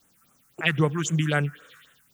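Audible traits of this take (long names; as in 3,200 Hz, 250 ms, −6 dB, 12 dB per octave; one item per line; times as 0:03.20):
a quantiser's noise floor 10 bits, dither triangular
phaser sweep stages 4, 3.8 Hz, lowest notch 510–4,800 Hz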